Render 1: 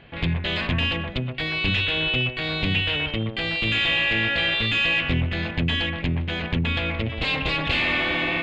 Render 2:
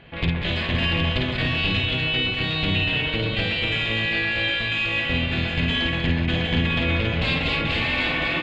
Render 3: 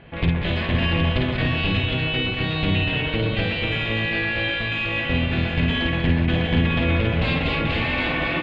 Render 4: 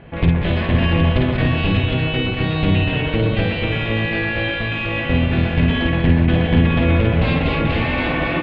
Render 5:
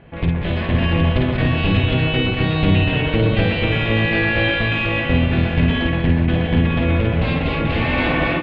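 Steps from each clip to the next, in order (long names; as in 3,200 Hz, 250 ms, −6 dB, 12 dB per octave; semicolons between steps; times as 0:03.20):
speech leveller 0.5 s; on a send: multi-tap delay 52/192/248/598/760 ms −4/−7/−7/−7/−4 dB; on the sum: level −3 dB
low-pass filter 1,800 Hz 6 dB per octave; level +3 dB
high-shelf EQ 2,200 Hz −9.5 dB; level +5.5 dB
automatic gain control; level −4 dB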